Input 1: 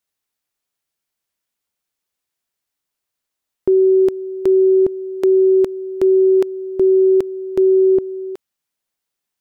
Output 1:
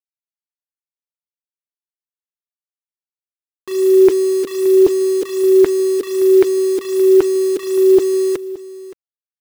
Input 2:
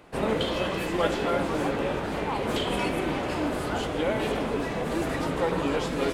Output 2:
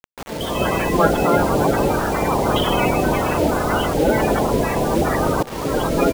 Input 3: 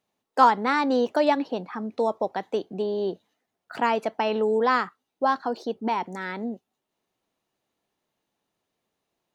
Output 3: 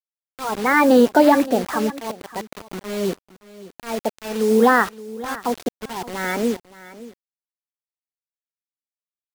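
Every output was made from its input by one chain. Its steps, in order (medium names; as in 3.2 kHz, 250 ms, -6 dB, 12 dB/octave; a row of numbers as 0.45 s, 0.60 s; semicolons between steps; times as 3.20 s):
coarse spectral quantiser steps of 30 dB; treble shelf 4.6 kHz -10.5 dB; peak limiter -14 dBFS; slow attack 475 ms; bit crusher 7-bit; delay 571 ms -17.5 dB; peak normalisation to -3 dBFS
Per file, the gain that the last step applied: +12.0 dB, +10.5 dB, +10.5 dB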